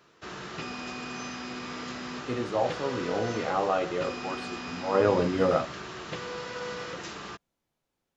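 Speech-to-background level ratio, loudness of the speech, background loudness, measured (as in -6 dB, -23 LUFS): 8.5 dB, -28.5 LUFS, -37.0 LUFS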